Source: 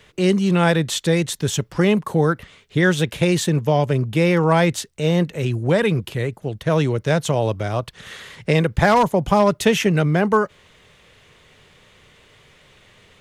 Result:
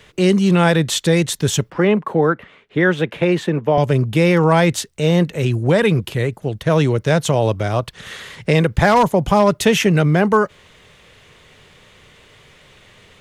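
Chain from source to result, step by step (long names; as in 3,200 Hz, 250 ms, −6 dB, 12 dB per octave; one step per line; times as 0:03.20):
0:01.70–0:03.78: three-way crossover with the lows and the highs turned down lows −14 dB, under 180 Hz, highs −19 dB, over 2,900 Hz
in parallel at −1.5 dB: brickwall limiter −10 dBFS, peak gain reduction 8 dB
on the sum: level −1.5 dB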